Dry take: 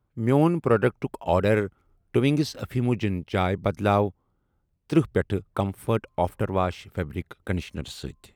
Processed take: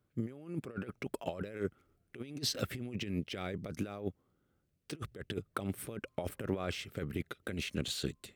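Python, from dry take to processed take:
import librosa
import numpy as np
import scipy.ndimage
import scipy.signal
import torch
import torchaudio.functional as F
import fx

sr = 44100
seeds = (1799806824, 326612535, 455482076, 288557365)

y = fx.peak_eq(x, sr, hz=910.0, db=-12.0, octaves=0.65)
y = fx.over_compress(y, sr, threshold_db=-29.0, ratio=-0.5)
y = fx.highpass(y, sr, hz=190.0, slope=6)
y = y * 10.0 ** (-4.5 / 20.0)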